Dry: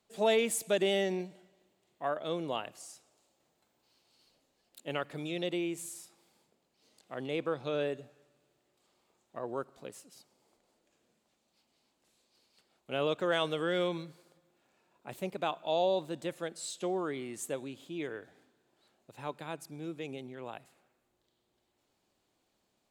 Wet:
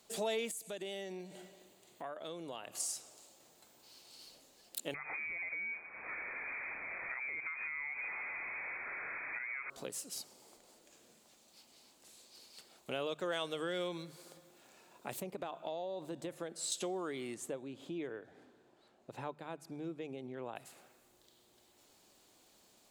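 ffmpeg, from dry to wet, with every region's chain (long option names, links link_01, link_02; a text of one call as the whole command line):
ffmpeg -i in.wav -filter_complex "[0:a]asettb=1/sr,asplit=3[link_01][link_02][link_03];[link_01]atrim=end=0.514[link_04];[link_02]atrim=start=0.51:end=2.8,asetpts=PTS-STARTPTS,afade=type=in:duration=0.004:curve=qsin,afade=type=out:start_time=2.286:duration=0.004:curve=qsin,bandreject=frequency=5400:width=11,acompressor=threshold=-55dB:ratio=2:attack=3.2:release=140:knee=1:detection=peak[link_05];[link_03]atrim=start=2.796[link_06];[link_04][link_05]acrossfade=duration=0.004:curve1=hsin:curve2=qsin[link_07];[link_07][link_06]acrossfade=duration=0.004:curve1=qsin:curve2=hsin,asettb=1/sr,asplit=3[link_08][link_09][link_10];[link_08]atrim=end=4.944[link_11];[link_09]atrim=start=4.94:end=9.7,asetpts=PTS-STARTPTS,afade=type=in:duration=0.004:curve=qsin,afade=type=out:start_time=4.756:duration=0.004:curve=qsin,aeval=exprs='val(0)+0.5*0.0119*sgn(val(0))':channel_layout=same,acompressor=threshold=-40dB:ratio=6:attack=3.2:release=140:knee=1:detection=peak,lowpass=frequency=2200:width_type=q:width=0.5098,lowpass=frequency=2200:width_type=q:width=0.6013,lowpass=frequency=2200:width_type=q:width=0.9,lowpass=frequency=2200:width_type=q:width=2.563,afreqshift=-2600[link_12];[link_10]atrim=start=9.696[link_13];[link_11][link_12]acrossfade=duration=0.004:curve1=hsin:curve2=qsin[link_14];[link_14][link_13]acrossfade=duration=0.004:curve1=qsin:curve2=hsin,asettb=1/sr,asplit=3[link_15][link_16][link_17];[link_15]atrim=end=15.204[link_18];[link_16]atrim=start=15.2:end=16.72,asetpts=PTS-STARTPTS,afade=type=in:duration=0.004:curve=qsin,afade=type=out:start_time=1.516:duration=0.004:curve=qsin,highshelf=frequency=2200:gain=-10.5,acompressor=threshold=-35dB:ratio=6:attack=3.2:release=140:knee=1:detection=peak[link_19];[link_17]atrim=start=16.716[link_20];[link_18][link_19]acrossfade=duration=0.004:curve1=hsin:curve2=qsin[link_21];[link_21][link_20]acrossfade=duration=0.004:curve1=qsin:curve2=hsin,asettb=1/sr,asplit=3[link_22][link_23][link_24];[link_22]atrim=end=17.344[link_25];[link_23]atrim=start=17.34:end=20.56,asetpts=PTS-STARTPTS,afade=type=in:duration=0.004:curve=qsin,afade=type=out:start_time=3.216:duration=0.004:curve=qsin,lowpass=frequency=1300:poles=1,tremolo=f=1.6:d=0.34[link_26];[link_24]atrim=start=20.556[link_27];[link_25][link_26]acrossfade=duration=0.004:curve1=hsin:curve2=qsin[link_28];[link_28][link_27]acrossfade=duration=0.004:curve1=qsin:curve2=hsin,acompressor=threshold=-52dB:ratio=2.5,bass=frequency=250:gain=-3,treble=frequency=4000:gain=7,bandreject=frequency=50:width_type=h:width=6,bandreject=frequency=100:width_type=h:width=6,bandreject=frequency=150:width_type=h:width=6,volume=9dB" out.wav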